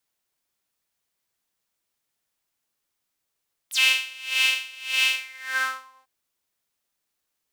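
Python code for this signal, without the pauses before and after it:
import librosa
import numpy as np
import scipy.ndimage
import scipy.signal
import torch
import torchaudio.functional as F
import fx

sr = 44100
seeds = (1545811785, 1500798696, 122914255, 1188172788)

y = fx.sub_patch_tremolo(sr, seeds[0], note=72, wave='saw', wave2='saw', interval_st=0, detune_cents=16, level2_db=-9.0, sub_db=-3.0, noise_db=-30.0, kind='highpass', cutoff_hz=880.0, q=6.2, env_oct=4.0, env_decay_s=0.07, env_sustain_pct=40, attack_ms=11.0, decay_s=0.83, sustain_db=-2.5, release_s=0.93, note_s=1.42, lfo_hz=1.7, tremolo_db=23.0)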